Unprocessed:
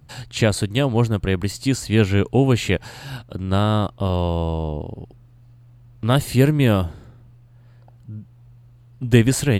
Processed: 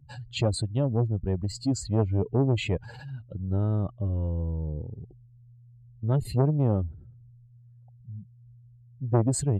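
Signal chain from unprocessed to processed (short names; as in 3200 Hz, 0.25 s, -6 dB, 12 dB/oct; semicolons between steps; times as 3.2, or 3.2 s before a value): spectral contrast raised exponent 2.1; core saturation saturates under 450 Hz; gain -5 dB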